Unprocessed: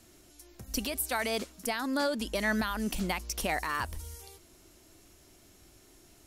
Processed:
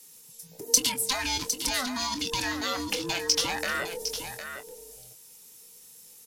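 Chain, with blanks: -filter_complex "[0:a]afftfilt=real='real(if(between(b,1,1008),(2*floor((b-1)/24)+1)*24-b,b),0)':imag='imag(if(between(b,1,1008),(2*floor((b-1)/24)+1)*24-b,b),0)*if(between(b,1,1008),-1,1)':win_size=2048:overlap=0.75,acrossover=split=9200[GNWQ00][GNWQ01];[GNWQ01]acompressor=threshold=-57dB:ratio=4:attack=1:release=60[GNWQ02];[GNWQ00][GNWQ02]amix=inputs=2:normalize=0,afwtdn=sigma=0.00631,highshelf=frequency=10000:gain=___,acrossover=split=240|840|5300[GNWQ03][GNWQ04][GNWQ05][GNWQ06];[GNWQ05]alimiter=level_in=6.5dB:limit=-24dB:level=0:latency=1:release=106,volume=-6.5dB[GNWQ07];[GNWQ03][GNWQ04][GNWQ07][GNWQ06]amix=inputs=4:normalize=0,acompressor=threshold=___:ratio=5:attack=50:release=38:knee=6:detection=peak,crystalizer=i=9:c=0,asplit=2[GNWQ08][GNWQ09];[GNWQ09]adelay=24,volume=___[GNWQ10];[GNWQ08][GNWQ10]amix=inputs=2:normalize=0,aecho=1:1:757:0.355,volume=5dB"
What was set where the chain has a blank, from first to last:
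3.5, -46dB, -9.5dB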